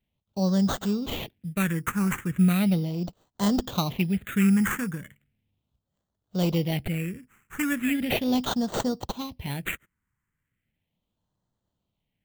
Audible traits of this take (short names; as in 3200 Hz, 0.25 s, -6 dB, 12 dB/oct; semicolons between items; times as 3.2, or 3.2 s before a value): aliases and images of a low sample rate 5100 Hz, jitter 0%; phasing stages 4, 0.37 Hz, lowest notch 630–2300 Hz